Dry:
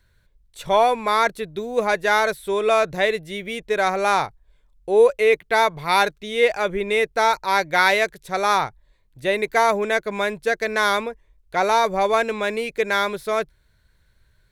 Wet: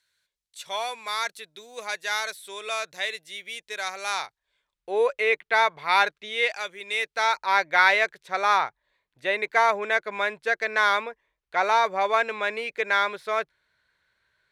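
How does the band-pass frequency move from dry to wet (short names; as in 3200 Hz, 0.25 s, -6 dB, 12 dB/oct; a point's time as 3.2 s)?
band-pass, Q 0.63
4.04 s 5900 Hz
4.94 s 1900 Hz
6.26 s 1900 Hz
6.75 s 6700 Hz
7.51 s 1700 Hz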